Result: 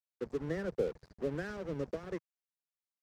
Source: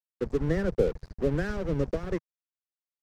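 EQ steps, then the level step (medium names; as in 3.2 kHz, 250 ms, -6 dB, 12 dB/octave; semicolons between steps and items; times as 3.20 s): high-pass 210 Hz 6 dB/octave; -7.0 dB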